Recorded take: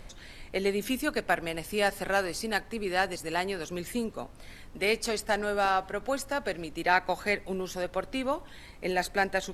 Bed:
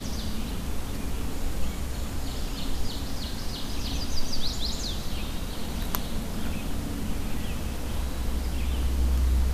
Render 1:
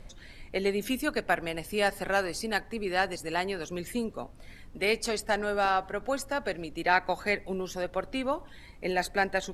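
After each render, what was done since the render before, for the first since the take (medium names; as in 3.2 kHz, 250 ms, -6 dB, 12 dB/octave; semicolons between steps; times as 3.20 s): noise reduction 6 dB, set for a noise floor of -49 dBFS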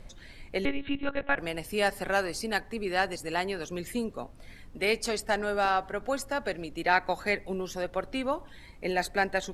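0.65–1.38 s: monotone LPC vocoder at 8 kHz 280 Hz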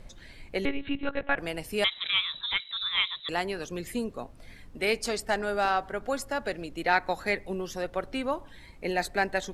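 1.84–3.29 s: frequency inversion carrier 3.9 kHz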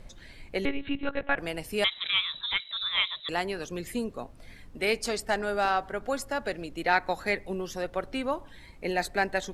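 2.65–3.25 s: peaking EQ 620 Hz +9.5 dB 0.3 oct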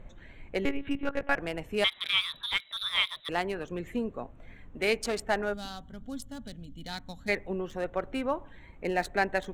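local Wiener filter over 9 samples; 5.53–7.28 s: time-frequency box 280–2900 Hz -18 dB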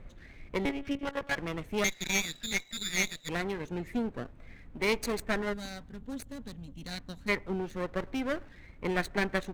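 comb filter that takes the minimum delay 0.47 ms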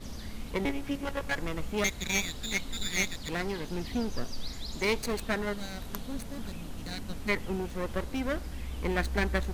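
add bed -10 dB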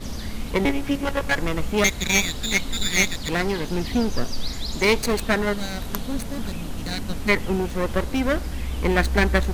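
trim +9.5 dB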